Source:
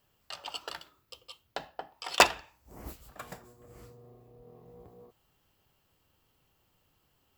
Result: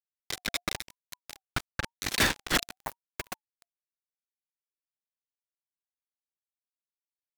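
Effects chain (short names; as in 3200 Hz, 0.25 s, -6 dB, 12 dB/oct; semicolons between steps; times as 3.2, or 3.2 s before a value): reverse delay 0.341 s, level -7 dB; bell 8500 Hz +4.5 dB 0.25 oct; fuzz box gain 37 dB, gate -37 dBFS; ring modulator with a swept carrier 860 Hz, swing 20%, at 0.96 Hz; gain -4 dB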